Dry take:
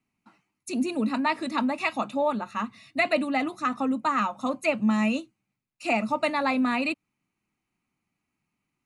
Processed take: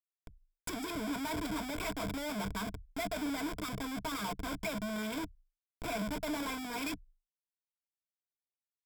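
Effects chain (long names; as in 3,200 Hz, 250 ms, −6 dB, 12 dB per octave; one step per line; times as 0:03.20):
dynamic equaliser 6,000 Hz, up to +4 dB, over −49 dBFS, Q 0.93
reversed playback
downward compressor 12 to 1, threshold −32 dBFS, peak gain reduction 14.5 dB
reversed playback
comparator with hysteresis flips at −43.5 dBFS
EQ curve with evenly spaced ripples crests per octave 1.7, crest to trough 12 dB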